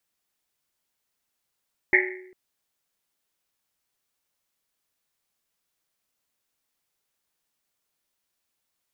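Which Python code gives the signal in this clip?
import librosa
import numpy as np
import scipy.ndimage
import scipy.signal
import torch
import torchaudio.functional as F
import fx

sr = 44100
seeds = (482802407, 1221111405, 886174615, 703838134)

y = fx.risset_drum(sr, seeds[0], length_s=0.4, hz=370.0, decay_s=0.9, noise_hz=2000.0, noise_width_hz=470.0, noise_pct=65)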